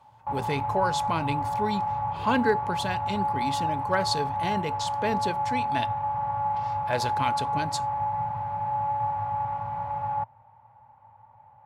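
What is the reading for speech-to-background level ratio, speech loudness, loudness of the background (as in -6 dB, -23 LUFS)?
-1.5 dB, -30.5 LUFS, -29.0 LUFS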